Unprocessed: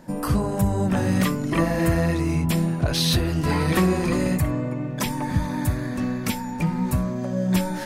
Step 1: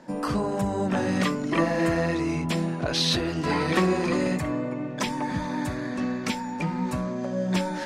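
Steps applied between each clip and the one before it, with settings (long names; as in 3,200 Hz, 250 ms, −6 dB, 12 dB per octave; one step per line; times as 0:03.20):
three-way crossover with the lows and the highs turned down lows −14 dB, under 190 Hz, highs −22 dB, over 7,800 Hz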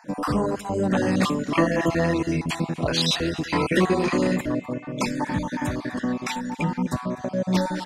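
time-frequency cells dropped at random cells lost 33%
single-tap delay 251 ms −19.5 dB
level +3.5 dB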